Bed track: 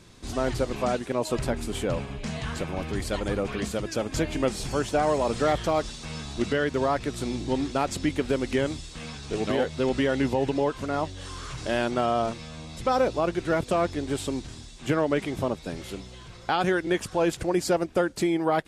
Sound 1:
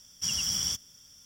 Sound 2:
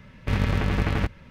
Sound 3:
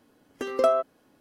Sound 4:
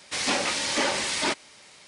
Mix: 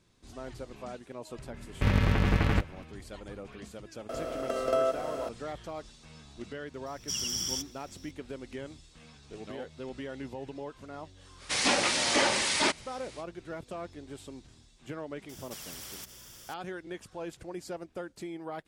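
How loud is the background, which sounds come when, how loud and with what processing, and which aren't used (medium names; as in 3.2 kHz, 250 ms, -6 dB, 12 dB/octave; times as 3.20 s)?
bed track -15.5 dB
1.54 s: add 2 -1.5 dB
4.09 s: add 3 -8.5 dB + spectral levelling over time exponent 0.2
6.86 s: add 1 -3.5 dB
11.38 s: add 4 -0.5 dB, fades 0.05 s
15.29 s: add 1 -14 dB + spectrum-flattening compressor 4:1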